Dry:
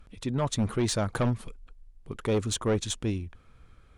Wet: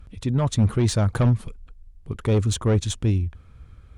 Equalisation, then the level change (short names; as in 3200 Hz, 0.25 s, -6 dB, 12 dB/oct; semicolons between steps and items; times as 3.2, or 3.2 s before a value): bell 76 Hz +12 dB 2.2 oct; +1.5 dB